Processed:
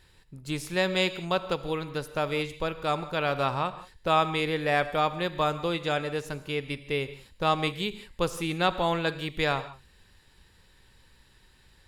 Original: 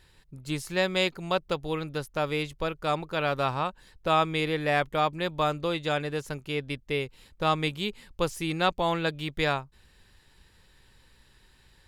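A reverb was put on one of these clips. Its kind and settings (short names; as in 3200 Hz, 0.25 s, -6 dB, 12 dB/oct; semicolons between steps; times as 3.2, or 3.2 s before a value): non-linear reverb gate 0.2 s flat, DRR 12 dB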